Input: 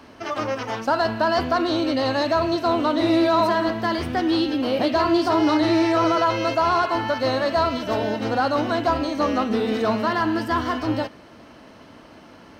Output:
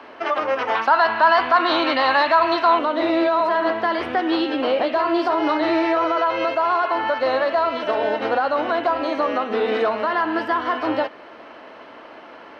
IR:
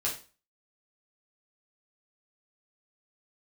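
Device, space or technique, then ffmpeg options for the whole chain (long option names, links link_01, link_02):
DJ mixer with the lows and highs turned down: -filter_complex "[0:a]acrossover=split=350 3400:gain=0.0794 1 0.0794[link_01][link_02][link_03];[link_01][link_02][link_03]amix=inputs=3:normalize=0,alimiter=limit=-19.5dB:level=0:latency=1:release=222,asettb=1/sr,asplit=3[link_04][link_05][link_06];[link_04]atrim=end=0.754[link_07];[link_05]atrim=start=0.75:end=2.79,asetpts=PTS-STARTPTS,afade=type=in:duration=0.004:curve=qsin,afade=type=out:start_time=2.036:duration=0.004:curve=qsin,equalizer=frequency=500:width_type=o:width=1:gain=-6,equalizer=frequency=1000:width_type=o:width=1:gain=8,equalizer=frequency=2000:width_type=o:width=1:gain=5,equalizer=frequency=4000:width_type=o:width=1:gain=6[link_08];[link_06]atrim=start=2.786[link_09];[link_07][link_08]acrossfade=duration=0.004:curve1=hsin:curve2=qsin[link_10];[link_10][link_09]acrossfade=duration=0.004:curve1=qsin:curve2=hsin,volume=8dB"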